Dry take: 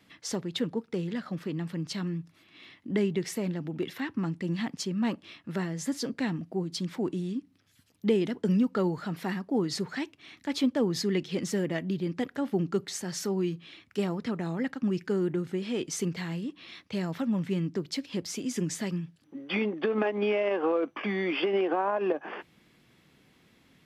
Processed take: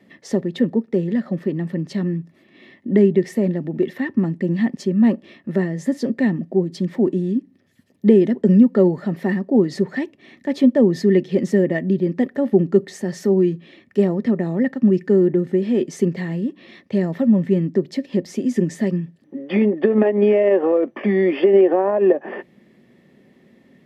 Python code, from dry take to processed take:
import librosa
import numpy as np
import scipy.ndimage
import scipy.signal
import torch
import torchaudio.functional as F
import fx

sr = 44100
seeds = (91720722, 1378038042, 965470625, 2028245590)

y = fx.small_body(x, sr, hz=(230.0, 380.0, 540.0, 1800.0), ring_ms=30, db=18)
y = y * 10.0 ** (-4.0 / 20.0)